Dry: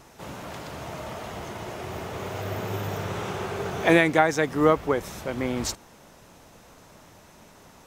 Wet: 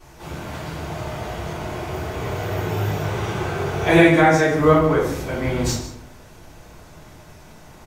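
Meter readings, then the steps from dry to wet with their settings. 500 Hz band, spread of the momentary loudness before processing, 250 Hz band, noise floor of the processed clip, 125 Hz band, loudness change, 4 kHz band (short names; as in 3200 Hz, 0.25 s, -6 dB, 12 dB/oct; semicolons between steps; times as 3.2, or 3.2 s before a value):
+5.5 dB, 17 LU, +7.0 dB, -45 dBFS, +10.0 dB, +6.0 dB, +4.5 dB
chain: on a send: echo 0.15 s -14 dB; on the sum: shoebox room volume 92 m³, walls mixed, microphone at 3.6 m; gain -8 dB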